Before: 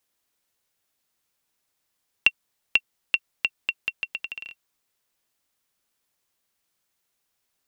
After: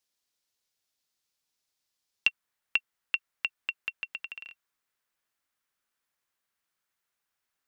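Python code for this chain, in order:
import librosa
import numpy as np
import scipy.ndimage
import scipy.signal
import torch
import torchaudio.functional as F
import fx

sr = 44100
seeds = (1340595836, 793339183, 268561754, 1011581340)

y = fx.peak_eq(x, sr, hz=fx.steps((0.0, 4900.0), (2.28, 1500.0)), db=8.0, octaves=1.4)
y = F.gain(torch.from_numpy(y), -9.0).numpy()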